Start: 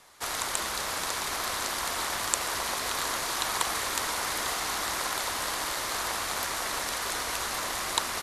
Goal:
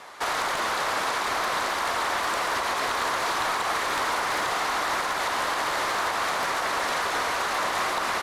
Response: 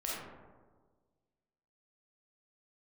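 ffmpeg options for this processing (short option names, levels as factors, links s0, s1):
-filter_complex "[0:a]asplit=2[s0][s1];[s1]highpass=f=720:p=1,volume=17.8,asoftclip=type=tanh:threshold=0.668[s2];[s0][s2]amix=inputs=2:normalize=0,lowpass=f=1100:p=1,volume=0.501,alimiter=limit=0.126:level=0:latency=1:release=150"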